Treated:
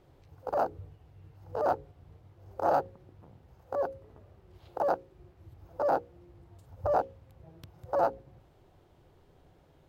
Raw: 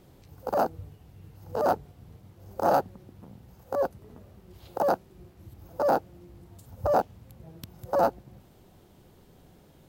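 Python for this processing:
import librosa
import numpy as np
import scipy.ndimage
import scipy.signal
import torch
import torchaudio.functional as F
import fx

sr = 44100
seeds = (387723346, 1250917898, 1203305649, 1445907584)

y = fx.lowpass(x, sr, hz=2200.0, slope=6)
y = fx.peak_eq(y, sr, hz=210.0, db=-11.0, octaves=0.6)
y = fx.hum_notches(y, sr, base_hz=60, count=9)
y = y * librosa.db_to_amplitude(-2.5)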